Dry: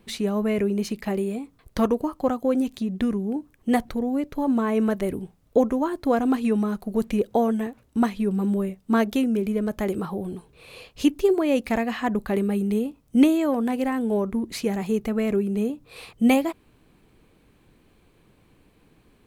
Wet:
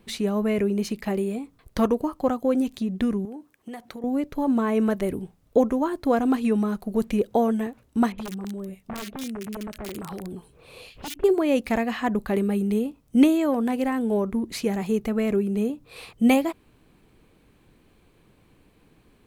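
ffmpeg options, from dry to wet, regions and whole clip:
ffmpeg -i in.wav -filter_complex "[0:a]asettb=1/sr,asplit=3[link_01][link_02][link_03];[link_01]atrim=end=3.254[link_04];[link_02]atrim=start=3.25:end=4.04,asetpts=PTS-STARTPTS,afade=type=in:duration=0.004:curve=qsin,afade=type=out:start_time=0.786:duration=0.004:curve=qsin,highpass=frequency=410:poles=1,acompressor=threshold=-33dB:ratio=12:attack=3.2:release=140:knee=1:detection=peak[link_05];[link_03]atrim=start=4.036[link_06];[link_04][link_05]acrossfade=duration=0.004:curve1=hsin:curve2=qsin[link_07];[link_07][link_06]acrossfade=duration=0.004:curve1=qsin:curve2=hsin,asettb=1/sr,asplit=3[link_08][link_09][link_10];[link_08]atrim=end=8.124[link_11];[link_09]atrim=start=8.12:end=11.24,asetpts=PTS-STARTPTS,afade=type=in:duration=0.004:curve=qsin,afade=type=out:start_time=3.116:duration=0.004:curve=qsin,acompressor=threshold=-31dB:ratio=6:attack=3.2:release=140:knee=1:detection=peak,aeval=exprs='(mod(23.7*val(0)+1,2)-1)/23.7':channel_layout=same,acrossover=split=1800[link_12][link_13];[link_13]adelay=60[link_14];[link_12][link_14]amix=inputs=2:normalize=0,atrim=end_sample=137592[link_15];[link_10]atrim=start=11.236[link_16];[link_11][link_15]acrossfade=duration=0.004:curve1=hsin:curve2=qsin[link_17];[link_17][link_16]acrossfade=duration=0.004:curve1=qsin:curve2=hsin" out.wav

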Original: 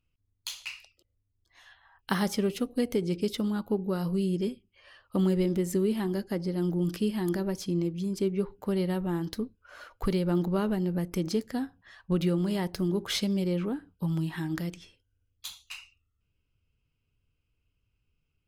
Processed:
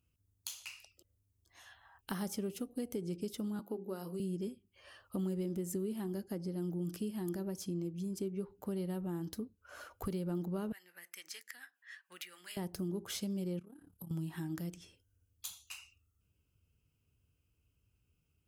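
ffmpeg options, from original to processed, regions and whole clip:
ffmpeg -i in.wav -filter_complex "[0:a]asettb=1/sr,asplit=3[link_01][link_02][link_03];[link_01]atrim=end=3.594[link_04];[link_02]atrim=start=3.59:end=4.2,asetpts=PTS-STARTPTS,afade=type=in:duration=0.004:curve=qsin,afade=type=out:start_time=0.606:duration=0.004:curve=qsin,highpass=frequency=230:width=0.5412,highpass=frequency=230:width=1.3066,bandreject=frequency=50:width_type=h:width=6,bandreject=frequency=100:width_type=h:width=6,bandreject=frequency=150:width_type=h:width=6,bandreject=frequency=200:width_type=h:width=6,bandreject=frequency=250:width_type=h:width=6,bandreject=frequency=300:width_type=h:width=6,bandreject=frequency=350:width_type=h:width=6,bandreject=frequency=400:width_type=h:width=6[link_05];[link_03]atrim=start=4.196[link_06];[link_04][link_05]acrossfade=duration=0.004:curve1=hsin:curve2=qsin[link_07];[link_07][link_06]acrossfade=duration=0.004:curve1=qsin:curve2=hsin,asettb=1/sr,asplit=3[link_08][link_09][link_10];[link_08]atrim=end=10.724[link_11];[link_09]atrim=start=10.72:end=12.57,asetpts=PTS-STARTPTS,afade=type=in:duration=0.004:curve=qsin,afade=type=out:start_time=1.846:duration=0.004:curve=qsin,acrossover=split=420[link_12][link_13];[link_12]aeval=exprs='val(0)*(1-0.7/2+0.7/2*cos(2*PI*7*n/s))':channel_layout=same[link_14];[link_13]aeval=exprs='val(0)*(1-0.7/2-0.7/2*cos(2*PI*7*n/s))':channel_layout=same[link_15];[link_14][link_15]amix=inputs=2:normalize=0,highpass=frequency=1900:width_type=q:width=4.4[link_16];[link_10]atrim=start=12.566[link_17];[link_11][link_16]acrossfade=duration=0.004:curve1=hsin:curve2=qsin[link_18];[link_18][link_17]acrossfade=duration=0.004:curve1=qsin:curve2=hsin,asettb=1/sr,asplit=3[link_19][link_20][link_21];[link_19]atrim=end=13.594[link_22];[link_20]atrim=start=13.59:end=14.11,asetpts=PTS-STARTPTS,afade=type=in:duration=0.004:curve=qsin,afade=type=out:start_time=0.516:duration=0.004:curve=qsin,equalizer=frequency=11000:width=1.5:gain=13.5,tremolo=f=35:d=0.788,acompressor=threshold=-46dB:ratio=10:attack=3.2:release=140:knee=1:detection=peak[link_23];[link_21]atrim=start=14.106[link_24];[link_22][link_23]acrossfade=duration=0.004:curve1=hsin:curve2=qsin[link_25];[link_25][link_24]acrossfade=duration=0.004:curve1=qsin:curve2=hsin,highpass=77,acompressor=threshold=-47dB:ratio=2,equalizer=frequency=125:width_type=o:width=1:gain=-5,equalizer=frequency=250:width_type=o:width=1:gain=-4,equalizer=frequency=500:width_type=o:width=1:gain=-5,equalizer=frequency=1000:width_type=o:width=1:gain=-6,equalizer=frequency=2000:width_type=o:width=1:gain=-9,equalizer=frequency=4000:width_type=o:width=1:gain=-9,volume=7.5dB" out.wav

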